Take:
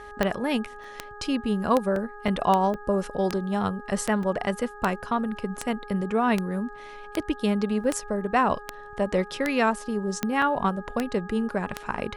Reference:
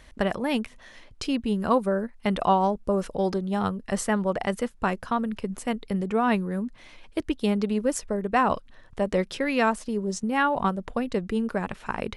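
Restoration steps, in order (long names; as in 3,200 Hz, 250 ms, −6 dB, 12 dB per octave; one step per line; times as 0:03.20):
click removal
hum removal 414.2 Hz, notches 4
repair the gap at 0:00.84/0:01.96/0:02.28/0:02.74/0:04.23/0:07.84/0:10.42/0:11.83, 2.5 ms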